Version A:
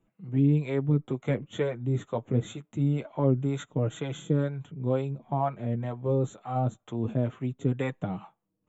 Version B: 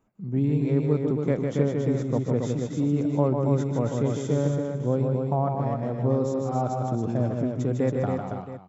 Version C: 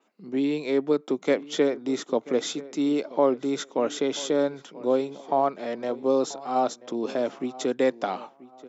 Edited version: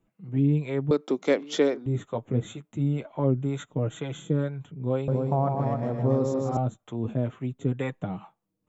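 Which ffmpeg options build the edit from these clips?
-filter_complex "[0:a]asplit=3[a][b][c];[a]atrim=end=0.912[d];[2:a]atrim=start=0.908:end=1.862[e];[b]atrim=start=1.858:end=5.082[f];[1:a]atrim=start=5.078:end=6.572[g];[c]atrim=start=6.568[h];[d][e]acrossfade=d=0.004:c1=hsin:c2=hsin[i];[i][f]acrossfade=d=0.004:c1=hsin:c2=hsin[j];[j][g]acrossfade=d=0.004:c1=hsin:c2=hsin[k];[k][h]acrossfade=d=0.004:c1=hsin:c2=hsin"

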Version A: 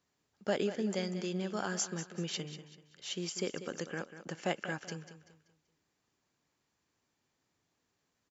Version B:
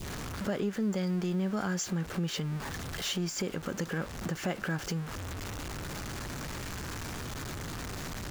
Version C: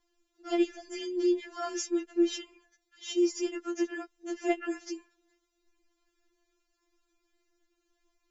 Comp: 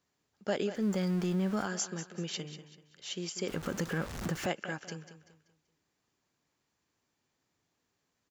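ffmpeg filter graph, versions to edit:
-filter_complex "[1:a]asplit=2[a][b];[0:a]asplit=3[c][d][e];[c]atrim=end=0.84[f];[a]atrim=start=0.74:end=1.7[g];[d]atrim=start=1.6:end=3.482[h];[b]atrim=start=3.478:end=4.462[i];[e]atrim=start=4.458[j];[f][g]acrossfade=d=0.1:c1=tri:c2=tri[k];[k][h]acrossfade=d=0.1:c1=tri:c2=tri[l];[l][i]acrossfade=d=0.004:c1=hsin:c2=hsin[m];[m][j]acrossfade=d=0.004:c1=hsin:c2=hsin"

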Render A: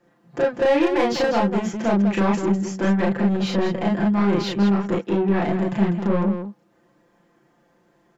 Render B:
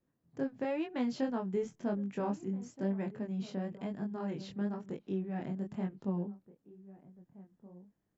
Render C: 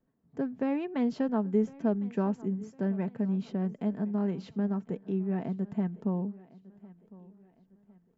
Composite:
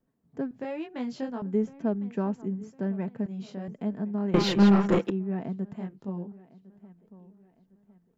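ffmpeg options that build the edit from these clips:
-filter_complex "[1:a]asplit=3[a][b][c];[2:a]asplit=5[d][e][f][g][h];[d]atrim=end=0.512[i];[a]atrim=start=0.508:end=1.422[j];[e]atrim=start=1.418:end=3.262[k];[b]atrim=start=3.258:end=3.682[l];[f]atrim=start=3.678:end=4.342[m];[0:a]atrim=start=4.338:end=5.102[n];[g]atrim=start=5.098:end=5.762[o];[c]atrim=start=5.758:end=6.322[p];[h]atrim=start=6.318[q];[i][j]acrossfade=d=0.004:c1=hsin:c2=hsin[r];[r][k]acrossfade=d=0.004:c1=hsin:c2=hsin[s];[s][l]acrossfade=d=0.004:c1=hsin:c2=hsin[t];[t][m]acrossfade=d=0.004:c1=hsin:c2=hsin[u];[u][n]acrossfade=d=0.004:c1=hsin:c2=hsin[v];[v][o]acrossfade=d=0.004:c1=hsin:c2=hsin[w];[w][p]acrossfade=d=0.004:c1=hsin:c2=hsin[x];[x][q]acrossfade=d=0.004:c1=hsin:c2=hsin"

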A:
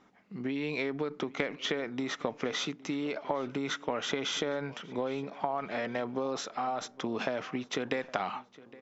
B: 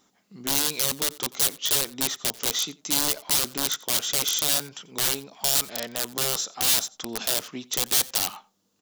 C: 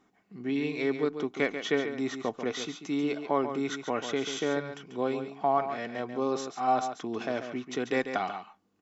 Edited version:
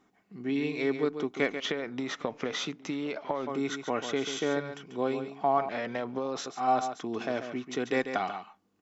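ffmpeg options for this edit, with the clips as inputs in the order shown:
-filter_complex "[0:a]asplit=2[a][b];[2:a]asplit=3[c][d][e];[c]atrim=end=1.602[f];[a]atrim=start=1.598:end=3.472[g];[d]atrim=start=3.468:end=5.692[h];[b]atrim=start=5.688:end=6.462[i];[e]atrim=start=6.458[j];[f][g]acrossfade=d=0.004:c1=hsin:c2=hsin[k];[k][h]acrossfade=d=0.004:c1=hsin:c2=hsin[l];[l][i]acrossfade=d=0.004:c1=hsin:c2=hsin[m];[m][j]acrossfade=d=0.004:c1=hsin:c2=hsin"

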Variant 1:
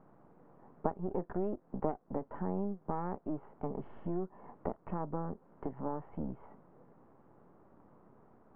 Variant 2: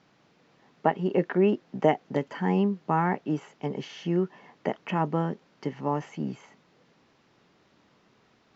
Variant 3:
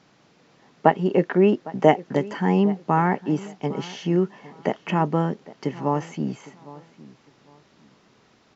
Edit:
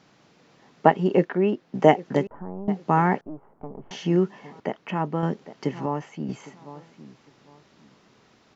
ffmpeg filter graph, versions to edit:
-filter_complex "[1:a]asplit=3[a][b][c];[0:a]asplit=2[d][e];[2:a]asplit=6[f][g][h][i][j][k];[f]atrim=end=1.252[l];[a]atrim=start=1.248:end=1.742[m];[g]atrim=start=1.738:end=2.272[n];[d]atrim=start=2.268:end=2.682[o];[h]atrim=start=2.678:end=3.212[p];[e]atrim=start=3.208:end=3.912[q];[i]atrim=start=3.908:end=4.602[r];[b]atrim=start=4.598:end=5.232[s];[j]atrim=start=5.228:end=5.862[t];[c]atrim=start=5.858:end=6.292[u];[k]atrim=start=6.288[v];[l][m]acrossfade=d=0.004:c1=hsin:c2=hsin[w];[w][n]acrossfade=d=0.004:c1=hsin:c2=hsin[x];[x][o]acrossfade=d=0.004:c1=hsin:c2=hsin[y];[y][p]acrossfade=d=0.004:c1=hsin:c2=hsin[z];[z][q]acrossfade=d=0.004:c1=hsin:c2=hsin[aa];[aa][r]acrossfade=d=0.004:c1=hsin:c2=hsin[ab];[ab][s]acrossfade=d=0.004:c1=hsin:c2=hsin[ac];[ac][t]acrossfade=d=0.004:c1=hsin:c2=hsin[ad];[ad][u]acrossfade=d=0.004:c1=hsin:c2=hsin[ae];[ae][v]acrossfade=d=0.004:c1=hsin:c2=hsin"

